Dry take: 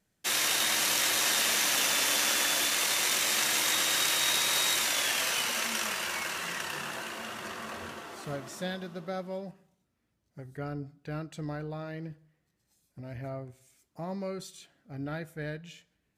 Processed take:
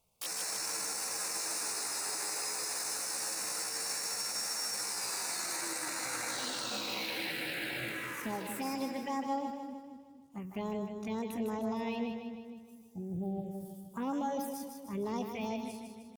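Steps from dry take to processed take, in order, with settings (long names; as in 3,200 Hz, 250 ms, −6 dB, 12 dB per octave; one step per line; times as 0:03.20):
healed spectral selection 0:12.89–0:13.66, 600–5,400 Hz both
phaser swept by the level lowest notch 200 Hz, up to 2,200 Hz, full sweep at −30.5 dBFS
downward compressor 10 to 1, threshold −34 dBFS, peak gain reduction 7.5 dB
pitch shifter +6.5 semitones
brickwall limiter −32.5 dBFS, peak gain reduction 7.5 dB
echo with a time of its own for lows and highs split 390 Hz, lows 233 ms, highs 154 ms, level −6 dB
level +4.5 dB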